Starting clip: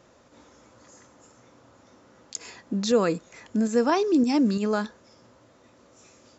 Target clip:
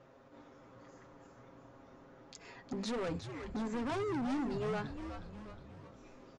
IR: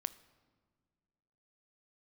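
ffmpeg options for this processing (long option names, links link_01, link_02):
-filter_complex "[0:a]bandreject=frequency=50:width_type=h:width=6,bandreject=frequency=100:width_type=h:width=6,bandreject=frequency=150:width_type=h:width=6,bandreject=frequency=200:width_type=h:width=6,bandreject=frequency=250:width_type=h:width=6,aecho=1:1:7.4:0.59,alimiter=limit=-18dB:level=0:latency=1:release=336,adynamicsmooth=sensitivity=1:basefreq=3000,asoftclip=type=hard:threshold=-31dB,aresample=22050,aresample=44100,asplit=2[link_01][link_02];[link_02]asplit=7[link_03][link_04][link_05][link_06][link_07][link_08][link_09];[link_03]adelay=361,afreqshift=-110,volume=-8.5dB[link_10];[link_04]adelay=722,afreqshift=-220,volume=-13.7dB[link_11];[link_05]adelay=1083,afreqshift=-330,volume=-18.9dB[link_12];[link_06]adelay=1444,afreqshift=-440,volume=-24.1dB[link_13];[link_07]adelay=1805,afreqshift=-550,volume=-29.3dB[link_14];[link_08]adelay=2166,afreqshift=-660,volume=-34.5dB[link_15];[link_09]adelay=2527,afreqshift=-770,volume=-39.7dB[link_16];[link_10][link_11][link_12][link_13][link_14][link_15][link_16]amix=inputs=7:normalize=0[link_17];[link_01][link_17]amix=inputs=2:normalize=0,volume=-3.5dB"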